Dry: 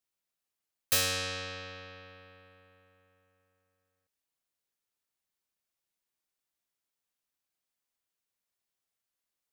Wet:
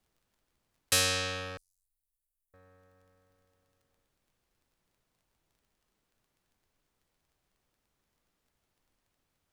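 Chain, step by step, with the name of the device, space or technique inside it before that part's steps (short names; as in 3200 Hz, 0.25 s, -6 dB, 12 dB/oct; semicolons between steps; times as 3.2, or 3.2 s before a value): Wiener smoothing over 15 samples; LPF 12000 Hz 24 dB/oct; vinyl LP (crackle 22/s; pink noise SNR 38 dB); 1.57–2.54 inverse Chebyshev band-stop 120–2400 Hz, stop band 70 dB; gain +2.5 dB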